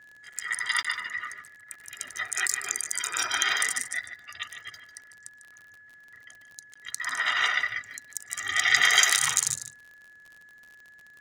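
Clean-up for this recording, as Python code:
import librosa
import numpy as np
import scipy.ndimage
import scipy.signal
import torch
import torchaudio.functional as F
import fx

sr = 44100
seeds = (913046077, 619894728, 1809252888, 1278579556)

y = fx.fix_declick_ar(x, sr, threshold=6.5)
y = fx.notch(y, sr, hz=1700.0, q=30.0)
y = fx.fix_interpolate(y, sr, at_s=(0.83, 6.74), length_ms=15.0)
y = fx.fix_echo_inverse(y, sr, delay_ms=148, level_db=-11.5)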